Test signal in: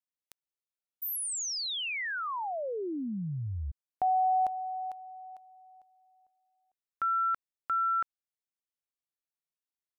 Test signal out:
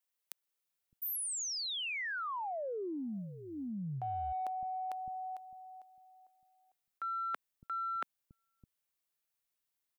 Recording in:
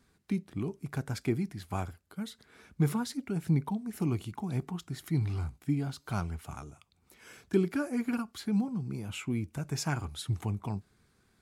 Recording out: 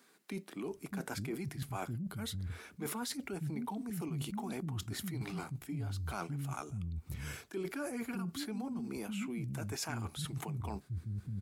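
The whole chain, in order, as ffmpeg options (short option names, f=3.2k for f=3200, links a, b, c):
-filter_complex "[0:a]bass=f=250:g=0,treble=f=4k:g=-7,acrossover=split=230[a][b];[a]adelay=610[c];[c][b]amix=inputs=2:normalize=0,crystalizer=i=2:c=0,aeval=exprs='0.141*(cos(1*acos(clip(val(0)/0.141,-1,1)))-cos(1*PI/2))+0.00141*(cos(7*acos(clip(val(0)/0.141,-1,1)))-cos(7*PI/2))':c=same,areverse,acompressor=threshold=-44dB:ratio=6:attack=19:release=39:knee=1:detection=rms,areverse,volume=5dB"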